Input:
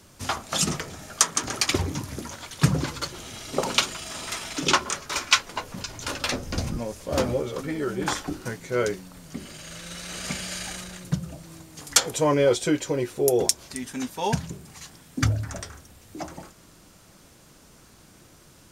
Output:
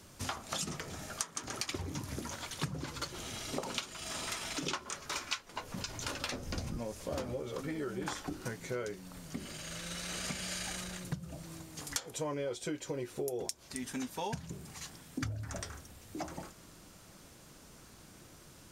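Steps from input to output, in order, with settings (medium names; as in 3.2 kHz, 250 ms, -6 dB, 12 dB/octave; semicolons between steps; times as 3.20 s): compression 6:1, threshold -32 dBFS, peak gain reduction 18.5 dB; trim -3 dB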